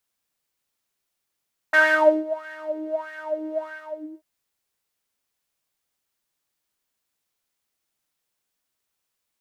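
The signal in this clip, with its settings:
subtractive patch with filter wobble D#5, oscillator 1 triangle, interval −12 semitones, oscillator 2 level −7 dB, sub −7.5 dB, noise −12 dB, filter bandpass, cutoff 560 Hz, Q 7.5, filter envelope 1.5 octaves, filter decay 0.08 s, filter sustain 35%, attack 11 ms, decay 0.50 s, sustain −22 dB, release 0.58 s, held 1.91 s, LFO 1.6 Hz, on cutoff 1.1 octaves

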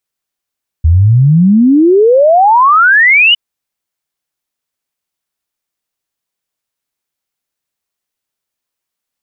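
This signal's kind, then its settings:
exponential sine sweep 76 Hz → 3,000 Hz 2.51 s −3.5 dBFS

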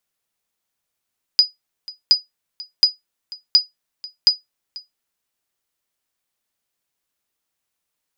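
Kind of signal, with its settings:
ping with an echo 4,940 Hz, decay 0.16 s, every 0.72 s, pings 5, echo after 0.49 s, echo −21 dB −3.5 dBFS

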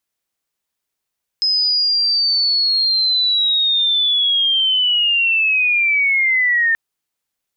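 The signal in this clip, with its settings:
glide linear 5,100 Hz → 1,800 Hz −13.5 dBFS → −12.5 dBFS 5.33 s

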